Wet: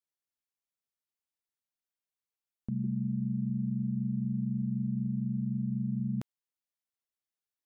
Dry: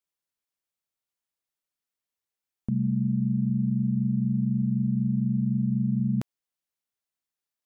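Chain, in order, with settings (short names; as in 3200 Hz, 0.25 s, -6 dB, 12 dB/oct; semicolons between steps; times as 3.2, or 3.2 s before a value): 2.84–5.06 bell 350 Hz +12.5 dB 0.25 oct; gain -7 dB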